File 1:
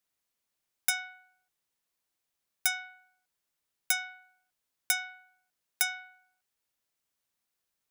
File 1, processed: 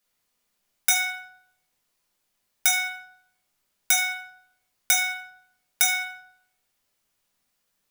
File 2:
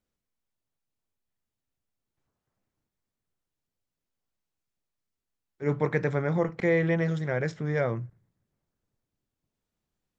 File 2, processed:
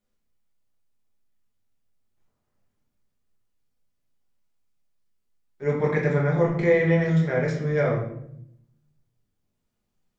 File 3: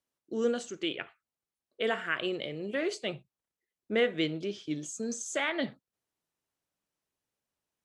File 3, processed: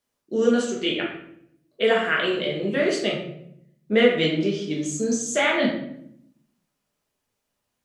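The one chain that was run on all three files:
simulated room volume 150 m³, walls mixed, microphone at 1.3 m; normalise loudness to -23 LUFS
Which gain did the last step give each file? +5.0 dB, -1.0 dB, +5.0 dB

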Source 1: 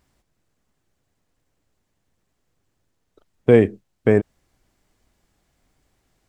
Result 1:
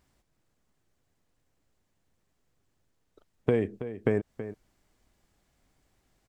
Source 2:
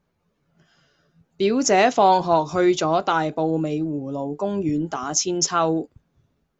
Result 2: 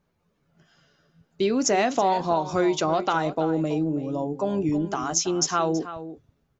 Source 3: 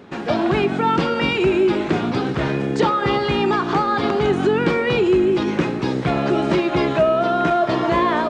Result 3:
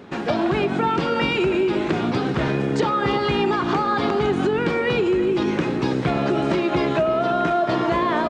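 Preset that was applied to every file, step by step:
compression 6:1, threshold -18 dBFS; echo from a far wall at 56 m, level -12 dB; peak normalisation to -9 dBFS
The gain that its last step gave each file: -3.5 dB, -0.5 dB, +1.0 dB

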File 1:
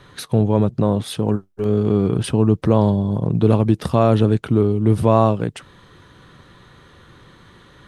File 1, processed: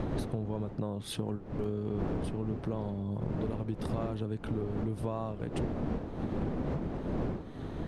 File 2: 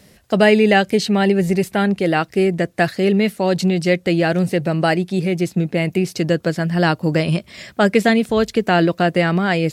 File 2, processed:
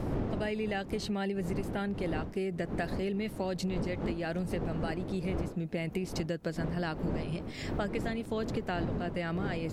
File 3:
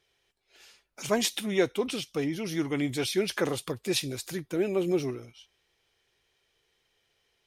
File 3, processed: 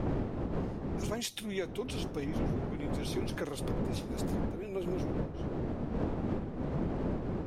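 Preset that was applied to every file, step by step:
wind noise 310 Hz -18 dBFS; compression 10:1, threshold -23 dBFS; trim -7 dB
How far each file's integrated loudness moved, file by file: -17.5 LU, -17.0 LU, -6.5 LU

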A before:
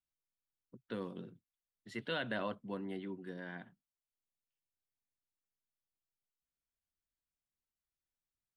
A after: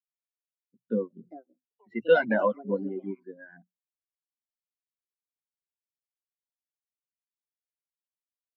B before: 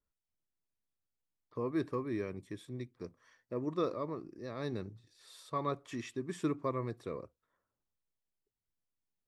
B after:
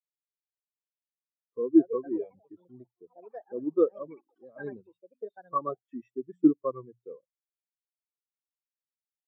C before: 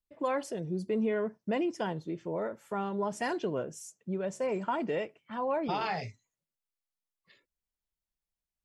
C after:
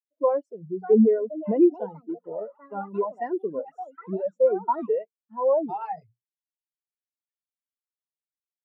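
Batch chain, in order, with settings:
reverb removal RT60 0.66 s; high-pass 120 Hz 6 dB/octave; hum notches 60/120/180 Hz; ever faster or slower copies 670 ms, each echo +6 st, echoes 3, each echo -6 dB; spectral contrast expander 2.5:1; peak normalisation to -9 dBFS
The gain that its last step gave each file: +15.0 dB, +13.0 dB, +10.0 dB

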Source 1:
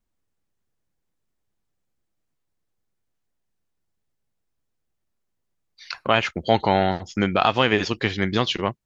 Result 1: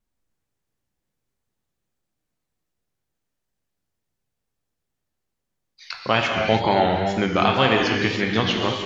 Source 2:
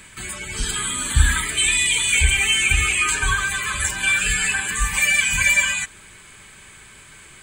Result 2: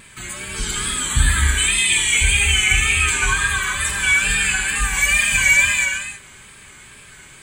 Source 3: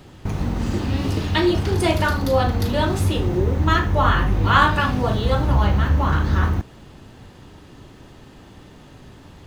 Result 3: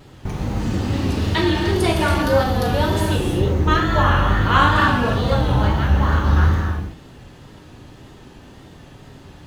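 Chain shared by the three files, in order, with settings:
gated-style reverb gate 350 ms flat, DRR 0.5 dB; wow and flutter 60 cents; trim -1 dB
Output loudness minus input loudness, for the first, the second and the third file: +1.5 LU, +2.0 LU, +1.5 LU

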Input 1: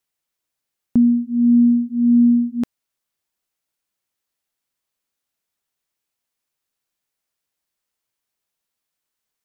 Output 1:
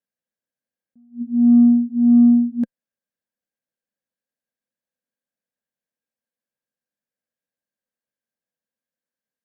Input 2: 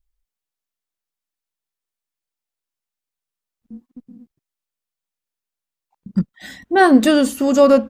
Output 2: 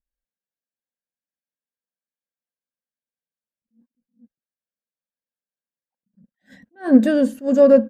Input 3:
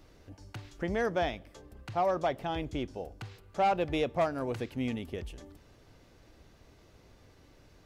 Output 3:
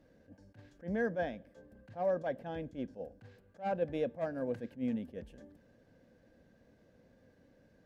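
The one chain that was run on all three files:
small resonant body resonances 220/510/1600 Hz, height 17 dB, ringing for 25 ms; Chebyshev shaper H 7 -39 dB, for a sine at 14 dBFS; attacks held to a fixed rise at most 260 dB/s; trim -15 dB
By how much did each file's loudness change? +1.5 LU, -1.0 LU, -5.0 LU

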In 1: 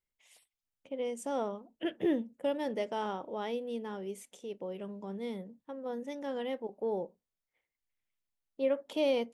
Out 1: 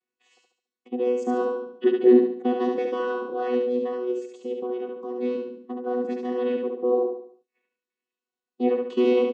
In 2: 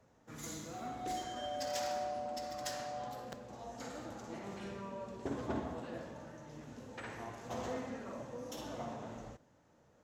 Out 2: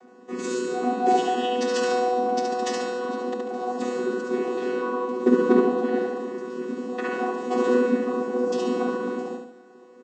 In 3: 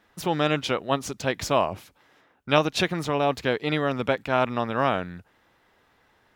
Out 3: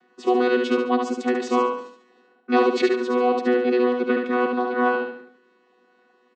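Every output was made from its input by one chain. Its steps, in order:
vocoder on a held chord bare fifth, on B3; on a send: feedback delay 71 ms, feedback 42%, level -4 dB; on the sum: peak normalisation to -6 dBFS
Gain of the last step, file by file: +11.0 dB, +20.0 dB, +4.0 dB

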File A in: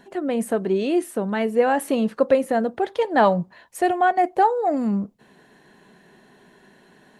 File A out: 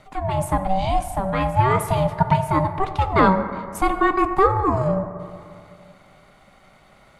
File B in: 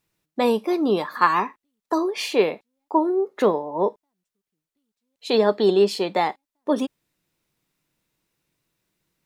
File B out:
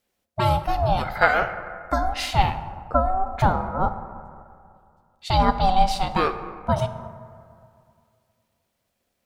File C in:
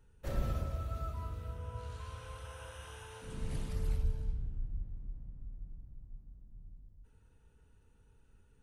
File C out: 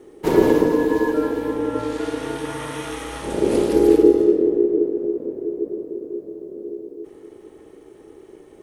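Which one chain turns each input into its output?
plate-style reverb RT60 2.3 s, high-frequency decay 0.35×, DRR 9.5 dB; ring modulator 380 Hz; peak normalisation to -2 dBFS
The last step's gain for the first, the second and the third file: +3.5 dB, +2.5 dB, +20.5 dB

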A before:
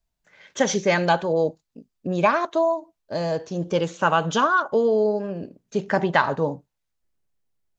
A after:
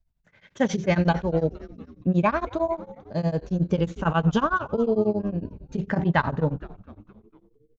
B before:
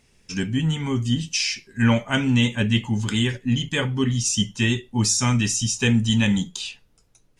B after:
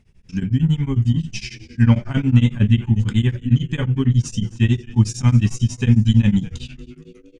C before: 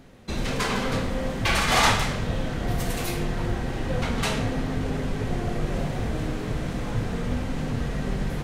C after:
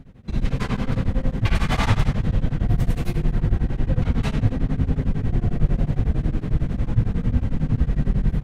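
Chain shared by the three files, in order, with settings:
tone controls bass +14 dB, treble -7 dB; on a send: frequency-shifting echo 234 ms, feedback 55%, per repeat -120 Hz, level -18 dB; on the sum: tremolo of two beating tones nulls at 11 Hz; trim -2.5 dB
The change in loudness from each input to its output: -2.5 LU, +3.5 LU, +3.0 LU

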